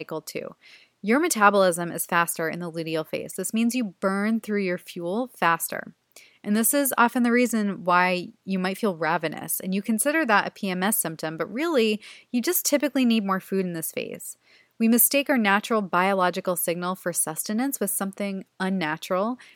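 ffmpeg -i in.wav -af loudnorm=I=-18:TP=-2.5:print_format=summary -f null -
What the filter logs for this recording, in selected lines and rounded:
Input Integrated:    -24.3 LUFS
Input True Peak:      -2.7 dBTP
Input LRA:             4.0 LU
Input Threshold:     -34.6 LUFS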